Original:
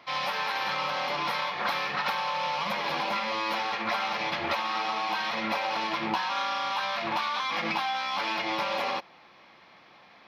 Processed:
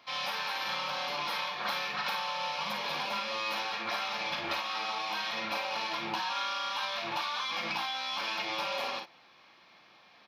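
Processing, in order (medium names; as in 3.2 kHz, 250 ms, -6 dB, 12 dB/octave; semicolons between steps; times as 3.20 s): high-pass 57 Hz; treble shelf 2.2 kHz +8 dB; band-stop 2 kHz, Q 13; early reflections 38 ms -8 dB, 53 ms -8 dB; trim -8 dB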